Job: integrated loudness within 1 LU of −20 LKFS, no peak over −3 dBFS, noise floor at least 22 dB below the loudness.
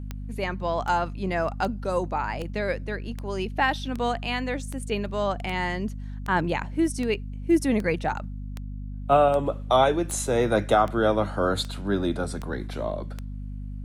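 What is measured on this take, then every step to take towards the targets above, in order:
number of clicks 18; mains hum 50 Hz; hum harmonics up to 250 Hz; level of the hum −32 dBFS; integrated loudness −26.0 LKFS; sample peak −7.5 dBFS; target loudness −20.0 LKFS
→ click removal
mains-hum notches 50/100/150/200/250 Hz
level +6 dB
brickwall limiter −3 dBFS

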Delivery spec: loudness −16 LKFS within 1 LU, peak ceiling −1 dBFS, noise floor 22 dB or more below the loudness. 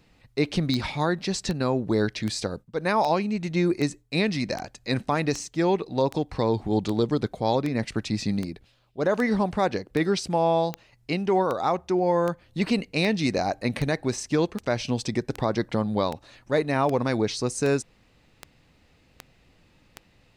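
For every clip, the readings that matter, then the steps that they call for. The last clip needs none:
number of clicks 26; integrated loudness −26.0 LKFS; sample peak −10.0 dBFS; target loudness −16.0 LKFS
→ click removal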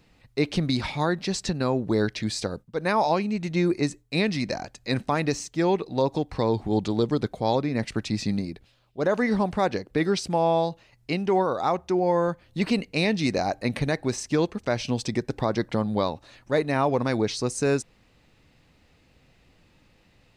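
number of clicks 0; integrated loudness −26.0 LKFS; sample peak −12.0 dBFS; target loudness −16.0 LKFS
→ level +10 dB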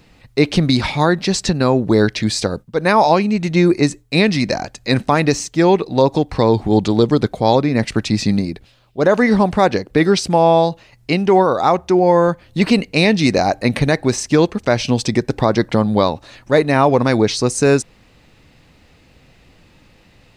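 integrated loudness −16.0 LKFS; sample peak −2.0 dBFS; background noise floor −51 dBFS

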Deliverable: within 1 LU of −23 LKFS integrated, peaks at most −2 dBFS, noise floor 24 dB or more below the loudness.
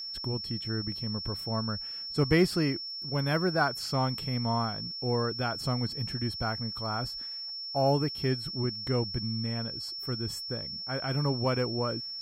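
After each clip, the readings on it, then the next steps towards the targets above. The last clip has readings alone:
crackle rate 29 per second; interfering tone 5,400 Hz; level of the tone −36 dBFS; integrated loudness −30.5 LKFS; sample peak −11.5 dBFS; target loudness −23.0 LKFS
→ click removal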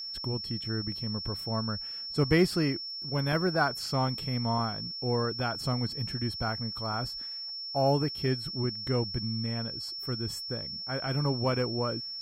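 crackle rate 0.16 per second; interfering tone 5,400 Hz; level of the tone −36 dBFS
→ notch filter 5,400 Hz, Q 30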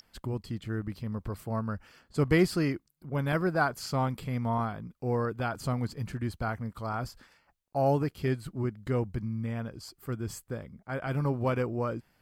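interfering tone none found; integrated loudness −32.0 LKFS; sample peak −11.5 dBFS; target loudness −23.0 LKFS
→ level +9 dB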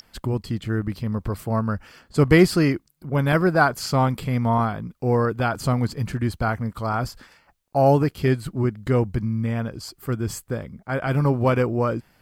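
integrated loudness −23.0 LKFS; sample peak −2.5 dBFS; background noise floor −62 dBFS

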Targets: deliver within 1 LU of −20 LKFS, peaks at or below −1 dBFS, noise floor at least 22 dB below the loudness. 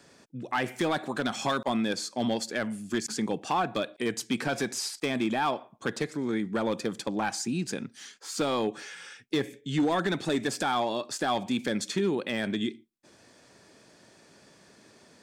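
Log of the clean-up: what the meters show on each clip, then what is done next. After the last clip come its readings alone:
share of clipped samples 0.9%; peaks flattened at −20.0 dBFS; integrated loudness −30.0 LKFS; sample peak −20.0 dBFS; target loudness −20.0 LKFS
→ clipped peaks rebuilt −20 dBFS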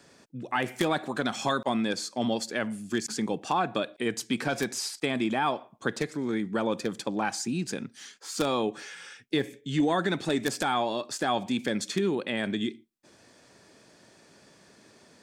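share of clipped samples 0.0%; integrated loudness −29.5 LKFS; sample peak −11.0 dBFS; target loudness −20.0 LKFS
→ level +9.5 dB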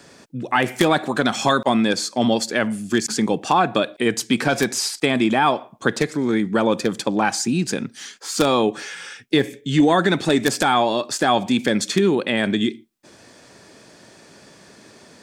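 integrated loudness −20.0 LKFS; sample peak −1.5 dBFS; background noise floor −49 dBFS

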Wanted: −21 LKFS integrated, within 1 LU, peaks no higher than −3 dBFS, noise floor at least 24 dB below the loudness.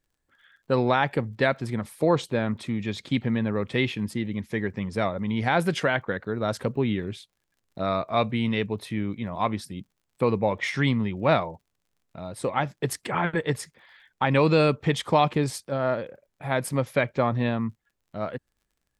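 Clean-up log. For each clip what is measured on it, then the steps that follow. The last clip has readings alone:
crackle rate 32 per second; integrated loudness −26.0 LKFS; sample peak −7.0 dBFS; target loudness −21.0 LKFS
→ click removal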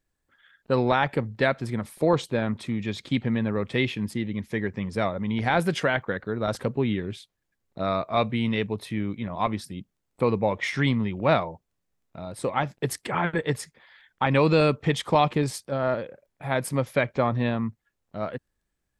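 crackle rate 0 per second; integrated loudness −26.5 LKFS; sample peak −7.0 dBFS; target loudness −21.0 LKFS
→ level +5.5 dB
brickwall limiter −3 dBFS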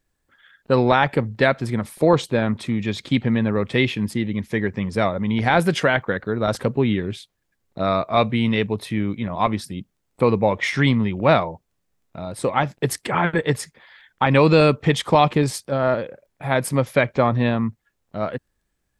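integrated loudness −21.0 LKFS; sample peak −3.0 dBFS; background noise floor −74 dBFS

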